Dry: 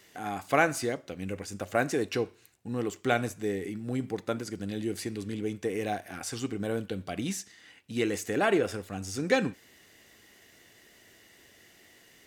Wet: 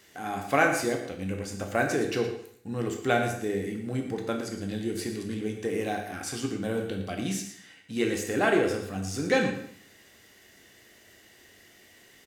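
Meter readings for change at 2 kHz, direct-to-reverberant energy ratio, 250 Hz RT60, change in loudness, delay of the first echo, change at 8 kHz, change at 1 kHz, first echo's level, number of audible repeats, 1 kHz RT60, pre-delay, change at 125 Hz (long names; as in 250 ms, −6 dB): +3.0 dB, 2.5 dB, 0.65 s, +2.0 dB, 114 ms, +2.0 dB, +2.0 dB, −12.0 dB, 1, 0.60 s, 6 ms, +2.0 dB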